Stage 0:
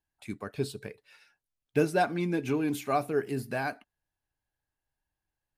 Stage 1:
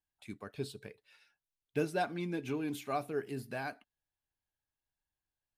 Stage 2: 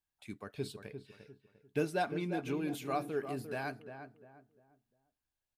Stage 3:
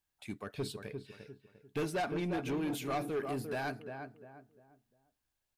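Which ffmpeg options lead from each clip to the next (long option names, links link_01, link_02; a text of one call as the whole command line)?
ffmpeg -i in.wav -af "equalizer=frequency=3400:width=2:gain=4,volume=-7.5dB" out.wav
ffmpeg -i in.wav -filter_complex "[0:a]asplit=2[link_01][link_02];[link_02]adelay=349,lowpass=frequency=1300:poles=1,volume=-8dB,asplit=2[link_03][link_04];[link_04]adelay=349,lowpass=frequency=1300:poles=1,volume=0.35,asplit=2[link_05][link_06];[link_06]adelay=349,lowpass=frequency=1300:poles=1,volume=0.35,asplit=2[link_07][link_08];[link_08]adelay=349,lowpass=frequency=1300:poles=1,volume=0.35[link_09];[link_01][link_03][link_05][link_07][link_09]amix=inputs=5:normalize=0" out.wav
ffmpeg -i in.wav -af "asoftclip=type=tanh:threshold=-34dB,volume=4.5dB" out.wav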